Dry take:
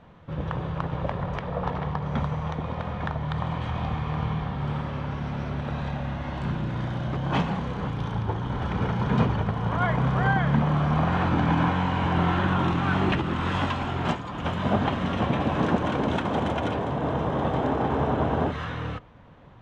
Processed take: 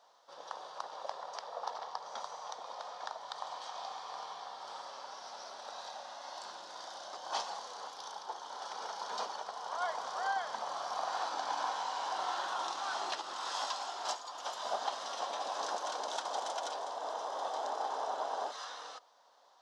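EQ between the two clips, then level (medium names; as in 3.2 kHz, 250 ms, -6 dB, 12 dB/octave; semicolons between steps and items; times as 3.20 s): ladder high-pass 590 Hz, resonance 35%; resonant high shelf 3.5 kHz +13.5 dB, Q 3; -2.5 dB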